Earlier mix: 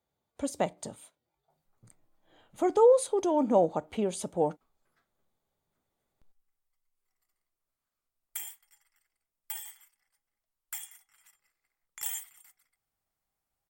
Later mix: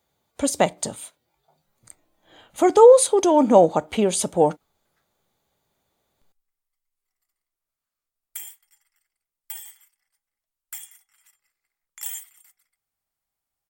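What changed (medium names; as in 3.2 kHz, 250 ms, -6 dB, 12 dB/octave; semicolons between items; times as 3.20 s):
speech +12.0 dB; master: add tilt shelf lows -3 dB, about 1.5 kHz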